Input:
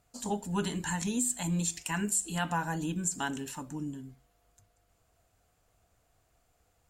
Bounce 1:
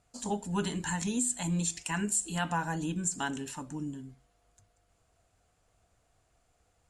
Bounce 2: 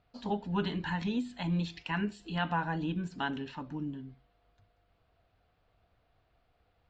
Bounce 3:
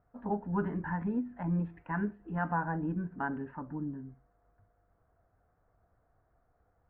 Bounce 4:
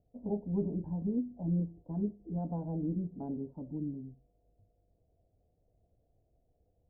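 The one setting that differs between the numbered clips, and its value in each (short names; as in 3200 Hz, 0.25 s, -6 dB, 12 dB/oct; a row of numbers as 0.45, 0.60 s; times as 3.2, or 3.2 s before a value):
steep low-pass, frequency: 11000, 4300, 1700, 630 Hz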